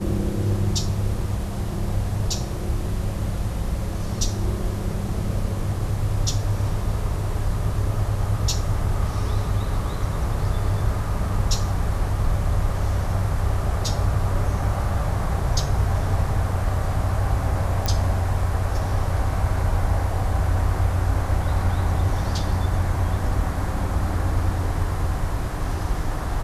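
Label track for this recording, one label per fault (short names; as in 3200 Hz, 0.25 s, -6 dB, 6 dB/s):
17.860000	17.860000	pop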